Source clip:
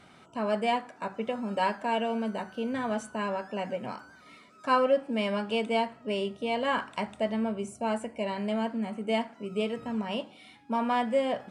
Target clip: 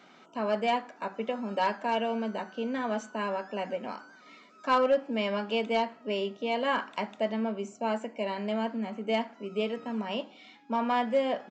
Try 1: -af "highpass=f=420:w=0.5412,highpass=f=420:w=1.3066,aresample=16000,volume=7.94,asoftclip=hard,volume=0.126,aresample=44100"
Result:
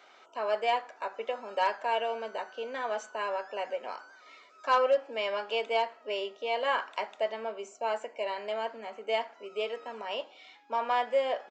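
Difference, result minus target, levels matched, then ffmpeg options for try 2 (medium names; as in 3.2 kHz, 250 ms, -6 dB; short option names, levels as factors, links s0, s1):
250 Hz band -17.0 dB
-af "highpass=f=200:w=0.5412,highpass=f=200:w=1.3066,aresample=16000,volume=7.94,asoftclip=hard,volume=0.126,aresample=44100"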